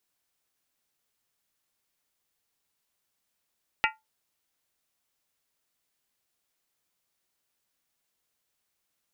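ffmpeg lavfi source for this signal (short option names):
-f lavfi -i "aevalsrc='0.0668*pow(10,-3*t/0.2)*sin(2*PI*876*t)+0.0668*pow(10,-3*t/0.158)*sin(2*PI*1396.3*t)+0.0668*pow(10,-3*t/0.137)*sin(2*PI*1871.1*t)+0.0668*pow(10,-3*t/0.132)*sin(2*PI*2011.3*t)+0.0668*pow(10,-3*t/0.123)*sin(2*PI*2324*t)+0.0668*pow(10,-3*t/0.117)*sin(2*PI*2556.2*t)+0.0668*pow(10,-3*t/0.113)*sin(2*PI*2764.7*t)':d=0.63:s=44100"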